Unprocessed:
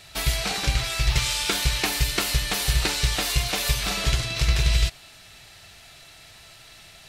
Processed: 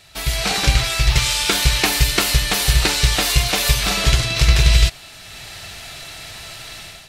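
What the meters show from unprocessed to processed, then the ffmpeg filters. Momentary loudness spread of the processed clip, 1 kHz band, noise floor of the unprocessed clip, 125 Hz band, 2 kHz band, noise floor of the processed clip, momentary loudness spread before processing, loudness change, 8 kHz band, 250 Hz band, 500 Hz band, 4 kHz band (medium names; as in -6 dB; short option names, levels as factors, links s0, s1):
18 LU, +7.0 dB, -49 dBFS, +7.0 dB, +7.0 dB, -40 dBFS, 2 LU, +7.0 dB, +7.0 dB, +7.0 dB, +7.0 dB, +7.0 dB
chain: -af "dynaudnorm=f=150:g=5:m=5.01,volume=0.891"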